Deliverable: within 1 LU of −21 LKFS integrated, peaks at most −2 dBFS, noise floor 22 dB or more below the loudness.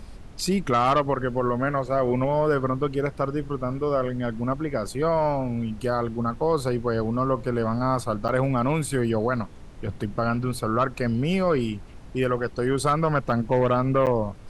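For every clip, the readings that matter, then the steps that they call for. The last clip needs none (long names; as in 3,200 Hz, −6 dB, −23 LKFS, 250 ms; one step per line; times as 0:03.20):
number of dropouts 2; longest dropout 8.2 ms; background noise floor −42 dBFS; target noise floor −47 dBFS; integrated loudness −25.0 LKFS; sample peak −10.5 dBFS; target loudness −21.0 LKFS
→ repair the gap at 0:08.28/0:14.06, 8.2 ms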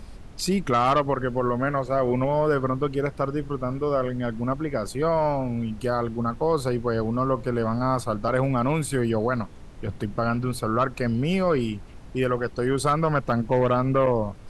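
number of dropouts 0; background noise floor −42 dBFS; target noise floor −47 dBFS
→ noise reduction from a noise print 6 dB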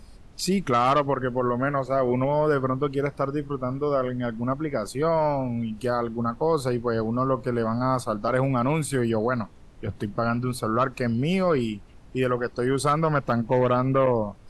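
background noise floor −48 dBFS; integrated loudness −25.0 LKFS; sample peak −10.5 dBFS; target loudness −21.0 LKFS
→ level +4 dB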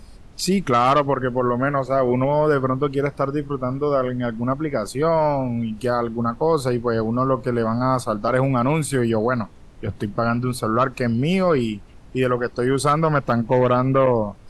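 integrated loudness −21.0 LKFS; sample peak −6.5 dBFS; background noise floor −44 dBFS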